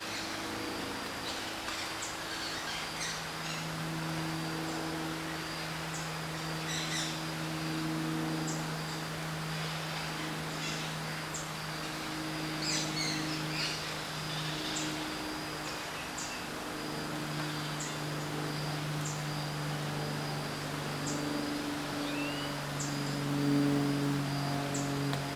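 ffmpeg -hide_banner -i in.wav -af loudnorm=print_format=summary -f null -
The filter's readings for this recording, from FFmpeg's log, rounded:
Input Integrated:    -34.8 LUFS
Input True Peak:     -16.2 dBTP
Input LRA:             3.8 LU
Input Threshold:     -44.8 LUFS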